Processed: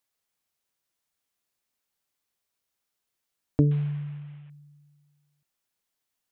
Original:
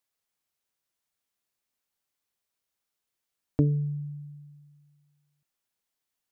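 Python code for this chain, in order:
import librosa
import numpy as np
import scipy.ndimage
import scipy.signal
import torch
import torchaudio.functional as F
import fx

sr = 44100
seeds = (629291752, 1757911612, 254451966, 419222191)

y = fx.cvsd(x, sr, bps=16000, at=(3.71, 4.5))
y = y * 10.0 ** (2.0 / 20.0)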